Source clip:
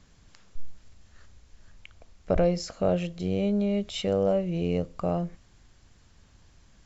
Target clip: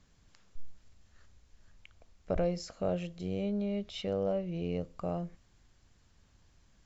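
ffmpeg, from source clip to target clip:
-filter_complex "[0:a]asettb=1/sr,asplit=3[a][b][c];[a]atrim=end=3.434[d];[b]atrim=start=3.43:end=4.81,asetpts=PTS-STARTPTS,afade=t=in:d=0.004:c=qsin,afade=t=out:st=1.376:d=0.004:c=qsin,lowpass=f=6.2k:w=0.5412,lowpass=f=6.2k:w=1.3066[e];[c]atrim=start=4.806[f];[d][e]acrossfade=d=0.004:c1=hsin:c2=qsin[g];[g][f]acrossfade=d=0.004:c1=qsin:c2=hsin,volume=-7.5dB"

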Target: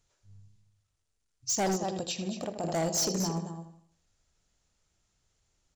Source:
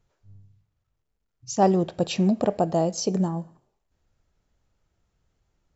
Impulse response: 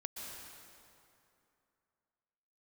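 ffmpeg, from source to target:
-filter_complex "[0:a]bandreject=f=60:t=h:w=6,bandreject=f=120:t=h:w=6,bandreject=f=180:t=h:w=6,bandreject=f=240:t=h:w=6,bandreject=f=300:t=h:w=6,bandreject=f=360:t=h:w=6,bandreject=f=420:t=h:w=6,bandreject=f=480:t=h:w=6,bandreject=f=540:t=h:w=6,asplit=2[a][b];[b]adelay=79,lowpass=f=4.7k:p=1,volume=-11dB,asplit=2[c][d];[d]adelay=79,lowpass=f=4.7k:p=1,volume=0.44,asplit=2[e][f];[f]adelay=79,lowpass=f=4.7k:p=1,volume=0.44,asplit=2[g][h];[h]adelay=79,lowpass=f=4.7k:p=1,volume=0.44,asplit=2[i][j];[j]adelay=79,lowpass=f=4.7k:p=1,volume=0.44[k];[c][e][g][i][k]amix=inputs=5:normalize=0[l];[a][l]amix=inputs=2:normalize=0,crystalizer=i=5:c=0,asplit=3[m][n][o];[m]afade=t=out:st=1.75:d=0.02[p];[n]acompressor=threshold=-27dB:ratio=5,afade=t=in:st=1.75:d=0.02,afade=t=out:st=2.63:d=0.02[q];[o]afade=t=in:st=2.63:d=0.02[r];[p][q][r]amix=inputs=3:normalize=0,asplit=2[s][t];[t]aecho=0:1:225:0.282[u];[s][u]amix=inputs=2:normalize=0,aresample=22050,aresample=44100,asoftclip=type=hard:threshold=-20dB,volume=-5.5dB"

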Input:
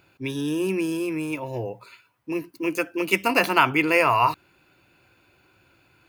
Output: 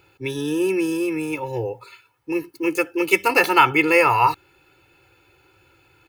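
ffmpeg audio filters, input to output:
-af "aecho=1:1:2.3:0.82,volume=1dB"

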